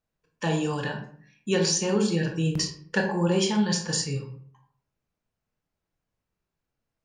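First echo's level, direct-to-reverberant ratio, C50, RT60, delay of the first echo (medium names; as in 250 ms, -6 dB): no echo, 2.0 dB, 7.5 dB, 0.55 s, no echo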